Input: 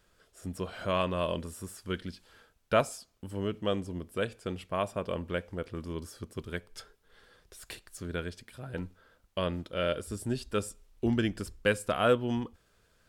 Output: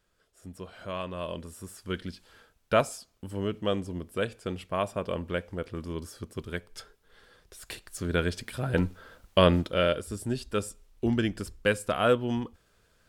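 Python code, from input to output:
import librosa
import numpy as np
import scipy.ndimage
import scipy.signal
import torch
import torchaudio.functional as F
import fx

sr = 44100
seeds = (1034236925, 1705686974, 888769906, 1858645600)

y = fx.gain(x, sr, db=fx.line((1.03, -6.0), (2.03, 2.0), (7.6, 2.0), (8.47, 11.5), (9.55, 11.5), (10.03, 1.5)))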